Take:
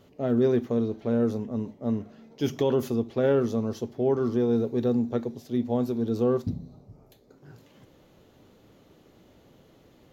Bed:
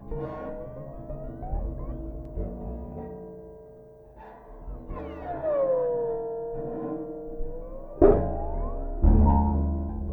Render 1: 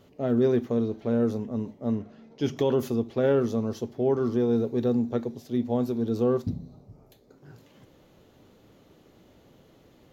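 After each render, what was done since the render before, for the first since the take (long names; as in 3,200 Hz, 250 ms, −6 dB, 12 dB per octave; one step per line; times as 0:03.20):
0:01.95–0:02.57: high-frequency loss of the air 52 metres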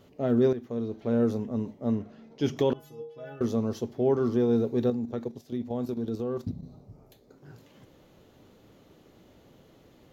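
0:00.53–0:01.20: fade in, from −14 dB
0:02.73–0:03.41: stiff-string resonator 150 Hz, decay 0.59 s, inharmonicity 0.008
0:04.90–0:06.63: output level in coarse steps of 10 dB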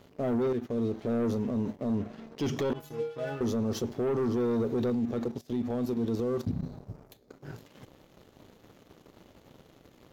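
leveller curve on the samples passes 2
brickwall limiter −23.5 dBFS, peak gain reduction 9.5 dB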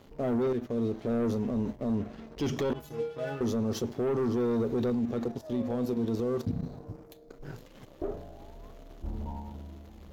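mix in bed −18 dB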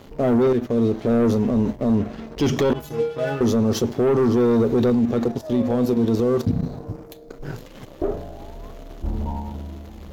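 level +10.5 dB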